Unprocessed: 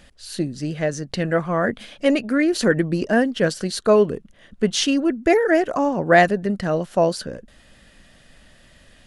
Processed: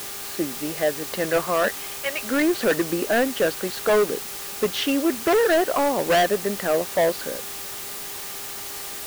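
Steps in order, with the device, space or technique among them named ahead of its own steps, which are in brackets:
0:01.68–0:02.23: high-pass filter 1,200 Hz 12 dB per octave
aircraft radio (band-pass filter 370–2,500 Hz; hard clipping −18.5 dBFS, distortion −7 dB; hum with harmonics 400 Hz, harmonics 3, −50 dBFS −2 dB per octave; white noise bed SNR 10 dB)
level +3 dB

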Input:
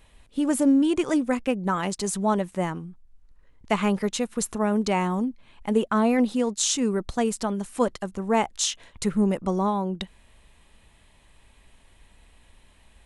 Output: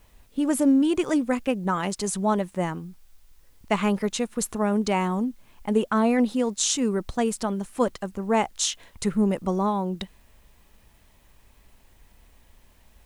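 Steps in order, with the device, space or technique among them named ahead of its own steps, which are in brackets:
plain cassette with noise reduction switched in (one half of a high-frequency compander decoder only; tape wow and flutter 26 cents; white noise bed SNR 40 dB)

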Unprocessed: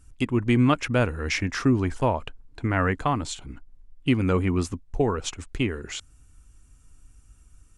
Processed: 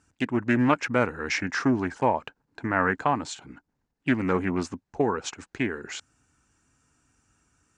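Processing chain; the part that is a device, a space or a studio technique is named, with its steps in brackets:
full-range speaker at full volume (highs frequency-modulated by the lows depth 0.27 ms; loudspeaker in its box 170–7,600 Hz, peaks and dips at 850 Hz +5 dB, 1,600 Hz +6 dB, 3,300 Hz −4 dB)
level −1 dB

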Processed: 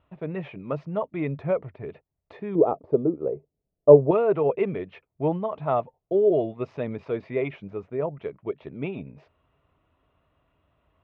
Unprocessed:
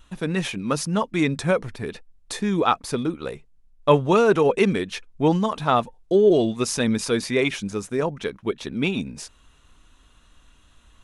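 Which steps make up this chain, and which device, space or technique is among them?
bass cabinet (loudspeaker in its box 85–2,300 Hz, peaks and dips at 86 Hz +6 dB, 140 Hz +6 dB, 220 Hz −6 dB, 410 Hz +4 dB, 630 Hz +10 dB, 1,600 Hz −9 dB)
0:02.55–0:04.11: drawn EQ curve 100 Hz 0 dB, 430 Hz +11 dB, 2,300 Hz −18 dB
level −8 dB

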